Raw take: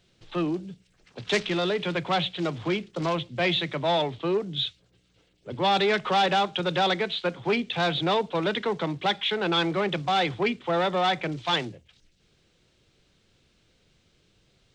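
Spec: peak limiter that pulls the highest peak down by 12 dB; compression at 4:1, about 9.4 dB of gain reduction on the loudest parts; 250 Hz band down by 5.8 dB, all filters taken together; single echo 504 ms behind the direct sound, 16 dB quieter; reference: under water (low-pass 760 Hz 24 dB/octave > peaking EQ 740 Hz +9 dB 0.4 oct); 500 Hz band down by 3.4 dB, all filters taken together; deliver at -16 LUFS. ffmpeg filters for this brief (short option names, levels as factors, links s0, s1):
-af "equalizer=f=250:t=o:g=-8,equalizer=f=500:t=o:g=-4.5,acompressor=threshold=0.0251:ratio=4,alimiter=level_in=2.37:limit=0.0631:level=0:latency=1,volume=0.422,lowpass=f=760:w=0.5412,lowpass=f=760:w=1.3066,equalizer=f=740:t=o:w=0.4:g=9,aecho=1:1:504:0.158,volume=21.1"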